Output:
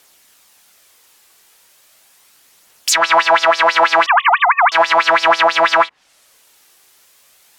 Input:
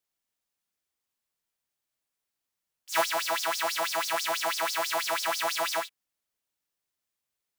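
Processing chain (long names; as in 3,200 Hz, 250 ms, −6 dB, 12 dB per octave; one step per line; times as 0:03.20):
0:04.06–0:04.72: three sine waves on the formant tracks
treble cut that deepens with the level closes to 1,100 Hz, closed at −29 dBFS
low-shelf EQ 250 Hz −12 dB
compressor whose output falls as the input rises −37 dBFS, ratio −1
phase shifter 0.37 Hz, delay 2.7 ms, feedback 24%
boost into a limiter +31 dB
level −1 dB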